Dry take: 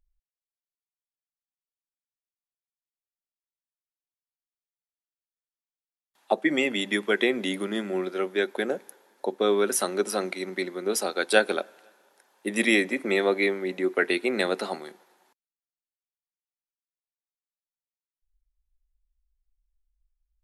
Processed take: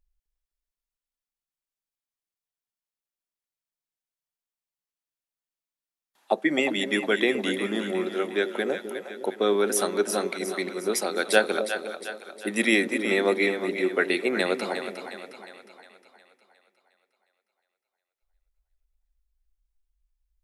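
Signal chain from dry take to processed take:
echo with a time of its own for lows and highs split 590 Hz, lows 257 ms, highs 359 ms, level −8.5 dB

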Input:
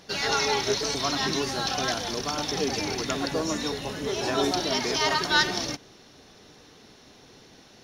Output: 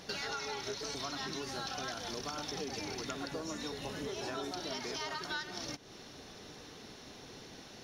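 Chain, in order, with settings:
dynamic equaliser 1,400 Hz, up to +5 dB, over −44 dBFS, Q 6
downward compressor 6 to 1, threshold −39 dBFS, peak gain reduction 22 dB
level +1 dB

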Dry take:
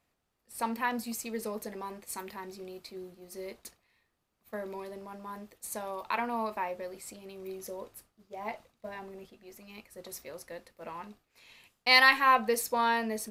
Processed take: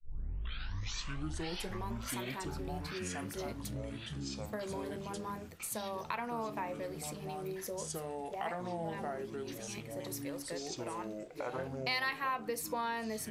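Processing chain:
turntable start at the beginning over 1.87 s
delay with pitch and tempo change per echo 264 ms, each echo −5 semitones, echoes 3
downward compressor 3 to 1, threshold −39 dBFS, peak gain reduction 17 dB
level +2 dB

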